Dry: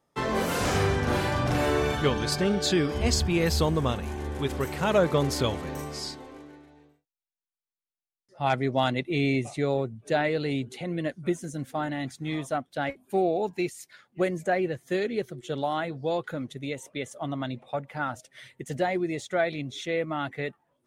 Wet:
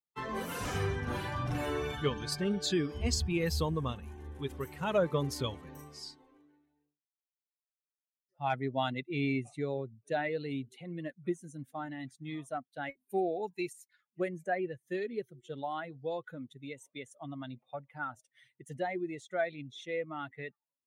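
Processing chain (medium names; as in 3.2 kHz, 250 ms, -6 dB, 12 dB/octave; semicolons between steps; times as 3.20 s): expander on every frequency bin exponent 1.5; 12.83–13.73 s: treble shelf 4 kHz +9 dB; trim -4.5 dB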